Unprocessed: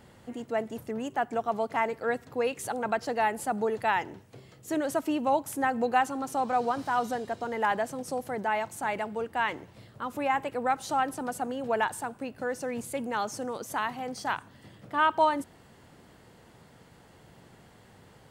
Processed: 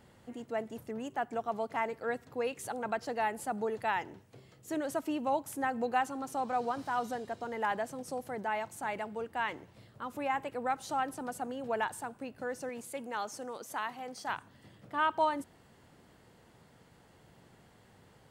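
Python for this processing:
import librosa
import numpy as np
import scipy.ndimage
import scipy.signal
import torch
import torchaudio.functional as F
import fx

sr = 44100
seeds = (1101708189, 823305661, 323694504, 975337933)

y = fx.highpass(x, sr, hz=310.0, slope=6, at=(12.69, 14.29))
y = y * librosa.db_to_amplitude(-5.5)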